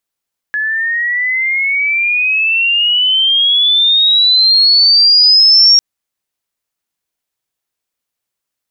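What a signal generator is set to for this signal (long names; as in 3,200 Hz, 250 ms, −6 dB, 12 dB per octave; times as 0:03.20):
glide logarithmic 1,700 Hz → 5,600 Hz −13.5 dBFS → −3.5 dBFS 5.25 s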